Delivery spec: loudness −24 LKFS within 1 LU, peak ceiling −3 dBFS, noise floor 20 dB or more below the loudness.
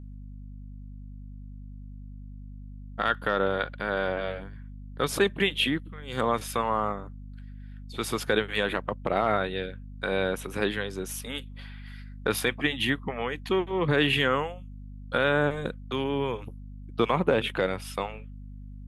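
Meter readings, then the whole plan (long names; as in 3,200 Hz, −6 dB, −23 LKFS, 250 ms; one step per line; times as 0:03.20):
mains hum 50 Hz; hum harmonics up to 250 Hz; level of the hum −39 dBFS; integrated loudness −28.0 LKFS; sample peak −10.0 dBFS; target loudness −24.0 LKFS
→ mains-hum notches 50/100/150/200/250 Hz
level +4 dB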